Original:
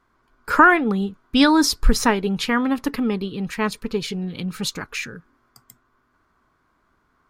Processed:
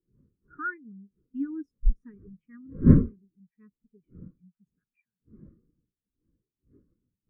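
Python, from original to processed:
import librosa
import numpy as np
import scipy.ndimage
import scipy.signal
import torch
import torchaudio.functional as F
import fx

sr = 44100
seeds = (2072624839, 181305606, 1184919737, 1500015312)

y = fx.dmg_wind(x, sr, seeds[0], corner_hz=620.0, level_db=-18.0)
y = fx.fixed_phaser(y, sr, hz=1800.0, stages=4)
y = fx.spectral_expand(y, sr, expansion=2.5)
y = y * 10.0 ** (-7.5 / 20.0)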